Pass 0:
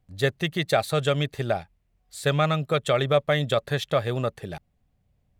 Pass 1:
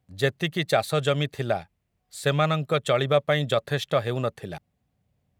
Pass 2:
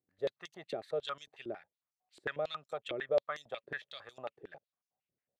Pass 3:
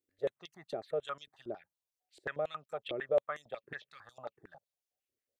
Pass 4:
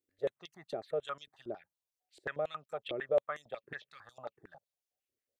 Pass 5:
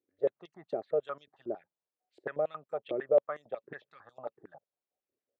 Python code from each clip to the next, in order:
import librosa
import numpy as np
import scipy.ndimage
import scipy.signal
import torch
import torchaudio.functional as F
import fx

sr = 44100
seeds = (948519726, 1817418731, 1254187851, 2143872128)

y1 = scipy.signal.sosfilt(scipy.signal.butter(2, 85.0, 'highpass', fs=sr, output='sos'), x)
y2 = fx.filter_held_bandpass(y1, sr, hz=11.0, low_hz=350.0, high_hz=6000.0)
y2 = y2 * 10.0 ** (-4.5 / 20.0)
y3 = fx.env_phaser(y2, sr, low_hz=160.0, high_hz=4700.0, full_db=-34.5)
y3 = y3 * 10.0 ** (1.0 / 20.0)
y4 = y3
y5 = fx.bandpass_q(y4, sr, hz=410.0, q=0.65)
y5 = y5 * 10.0 ** (5.5 / 20.0)